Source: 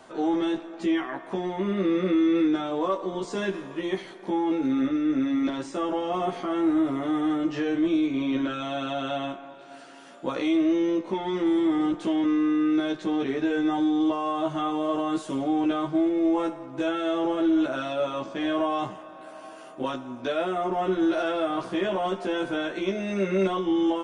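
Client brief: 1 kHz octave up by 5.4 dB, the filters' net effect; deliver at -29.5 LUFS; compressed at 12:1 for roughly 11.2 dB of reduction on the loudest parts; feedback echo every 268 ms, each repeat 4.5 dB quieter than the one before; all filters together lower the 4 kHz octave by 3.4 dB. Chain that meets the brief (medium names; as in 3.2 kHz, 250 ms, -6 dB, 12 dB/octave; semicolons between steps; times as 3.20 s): peaking EQ 1 kHz +7.5 dB; peaking EQ 4 kHz -5 dB; compression 12:1, threshold -30 dBFS; feedback delay 268 ms, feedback 60%, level -4.5 dB; trim +3 dB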